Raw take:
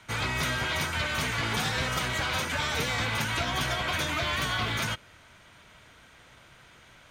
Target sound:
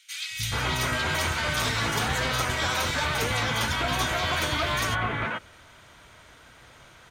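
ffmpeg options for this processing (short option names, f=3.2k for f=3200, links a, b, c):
-filter_complex "[0:a]acrossover=split=180|2500[a][b][c];[a]adelay=300[d];[b]adelay=430[e];[d][e][c]amix=inputs=3:normalize=0,volume=4dB"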